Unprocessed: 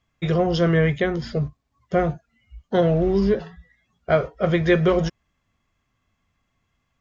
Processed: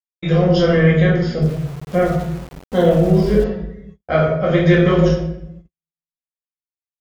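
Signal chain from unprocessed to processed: simulated room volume 230 m³, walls mixed, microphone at 2.1 m; gate -35 dBFS, range -55 dB; 1.42–3.44 s: small samples zeroed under -29.5 dBFS; trim -2 dB

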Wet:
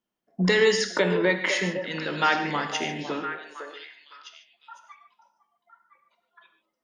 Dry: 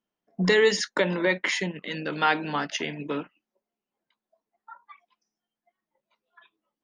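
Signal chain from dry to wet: on a send: repeats whose band climbs or falls 506 ms, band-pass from 590 Hz, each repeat 1.4 oct, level -6 dB; on the sum: gated-style reverb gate 170 ms flat, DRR 6.5 dB

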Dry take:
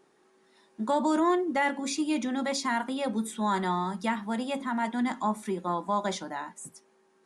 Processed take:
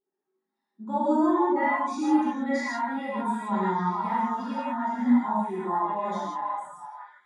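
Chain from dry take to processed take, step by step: repeats whose band climbs or falls 464 ms, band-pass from 1 kHz, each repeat 0.7 oct, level 0 dB; gated-style reverb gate 210 ms flat, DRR -7.5 dB; spectral contrast expander 1.5:1; trim -6 dB

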